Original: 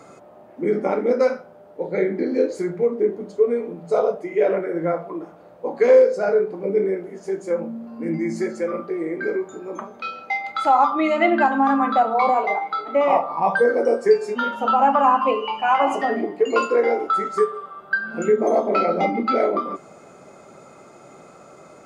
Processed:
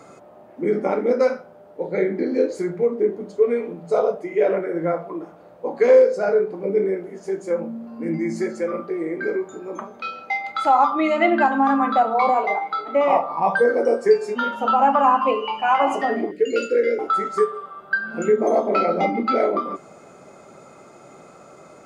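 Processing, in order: 3.42–3.9 dynamic EQ 2400 Hz, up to +7 dB, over -43 dBFS, Q 0.86; 16.31–16.99 Chebyshev band-stop 550–1500 Hz, order 3

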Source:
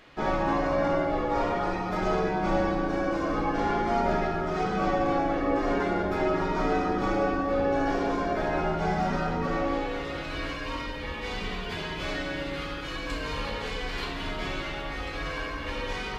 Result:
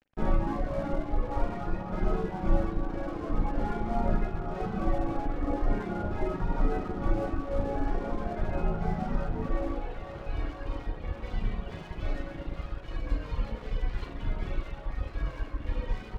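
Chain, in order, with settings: RIAA curve playback; reverb removal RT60 1.8 s; resonator 110 Hz, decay 0.72 s, harmonics all, mix 60%; crossover distortion -46.5 dBFS; band-limited delay 0.508 s, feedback 80%, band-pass 760 Hz, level -11 dB; reverb RT60 0.45 s, pre-delay 37 ms, DRR 12.5 dB

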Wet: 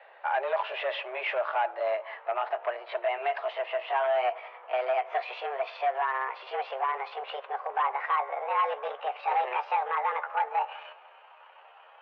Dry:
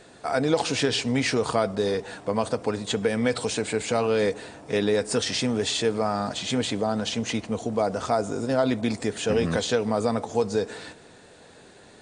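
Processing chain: gliding pitch shift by +9 st starting unshifted; overloaded stage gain 20.5 dB; mistuned SSB +130 Hz 440–2700 Hz

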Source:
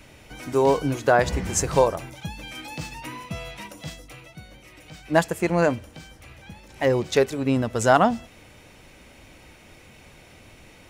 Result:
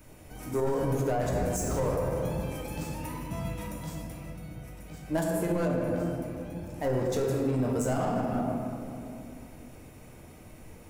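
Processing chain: soft clip -17 dBFS, distortion -10 dB; high shelf 7200 Hz +9 dB; reverb RT60 2.7 s, pre-delay 6 ms, DRR -2.5 dB; limiter -14.5 dBFS, peak gain reduction 8.5 dB; bell 3300 Hz -11 dB 2.2 oct; gain -4.5 dB

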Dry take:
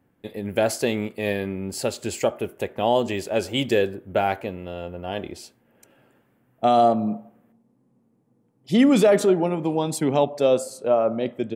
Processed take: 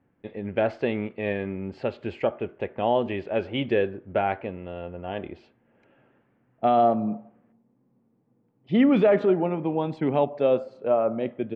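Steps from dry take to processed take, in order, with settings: LPF 2800 Hz 24 dB/oct; gain -2.5 dB

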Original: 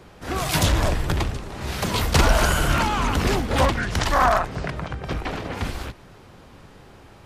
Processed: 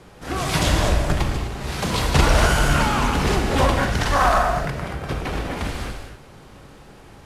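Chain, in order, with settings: CVSD 64 kbps; non-linear reverb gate 0.28 s flat, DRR 2 dB

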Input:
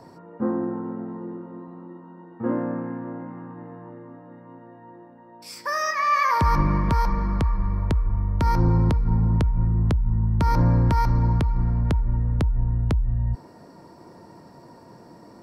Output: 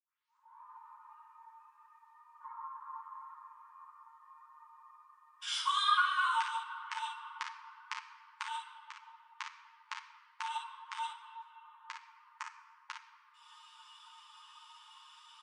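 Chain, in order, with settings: tape start at the beginning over 0.61 s; compressor 6:1, threshold -26 dBFS, peak gain reduction 11 dB; pitch shift -7.5 st; brick-wall FIR high-pass 880 Hz; early reflections 32 ms -9 dB, 56 ms -5.5 dB; shoebox room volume 3300 m³, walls mixed, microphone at 0.94 m; ensemble effect; gain +7 dB

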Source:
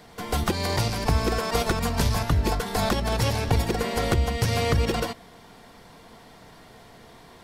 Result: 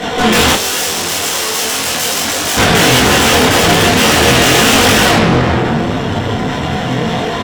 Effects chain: self-modulated delay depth 0.14 ms; notch 4700 Hz; wrapped overs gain 21 dB; low shelf 170 Hz -6 dB; early reflections 23 ms -7 dB, 48 ms -6.5 dB; reverb RT60 3.5 s, pre-delay 3 ms, DRR 1 dB; tube stage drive 30 dB, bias 0.75; 0.55–2.57 tone controls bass -10 dB, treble +9 dB; maximiser +33 dB; detuned doubles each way 14 cents; gain -1.5 dB

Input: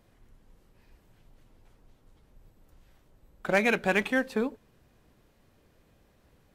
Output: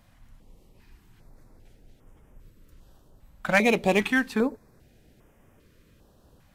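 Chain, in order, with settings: stepped notch 2.5 Hz 400–4200 Hz; gain +5.5 dB

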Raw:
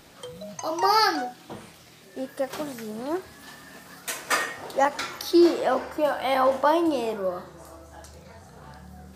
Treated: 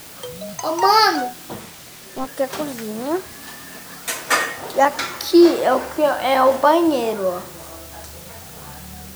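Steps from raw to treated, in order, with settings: added noise white -47 dBFS; 1.6–2.27 Doppler distortion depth 0.95 ms; gain +6.5 dB

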